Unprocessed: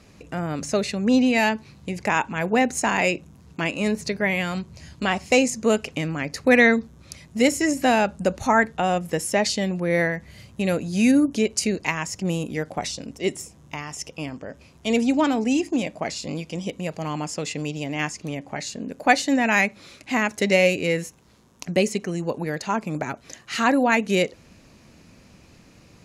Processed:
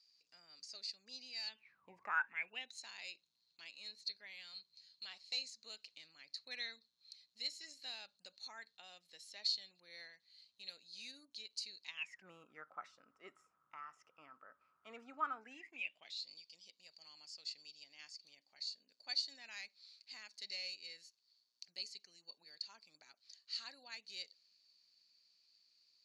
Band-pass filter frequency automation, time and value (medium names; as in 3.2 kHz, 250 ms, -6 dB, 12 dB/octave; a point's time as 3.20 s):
band-pass filter, Q 18
1.46 s 4.7 kHz
1.90 s 860 Hz
2.75 s 4.2 kHz
11.85 s 4.2 kHz
12.29 s 1.3 kHz
15.32 s 1.3 kHz
16.26 s 4.5 kHz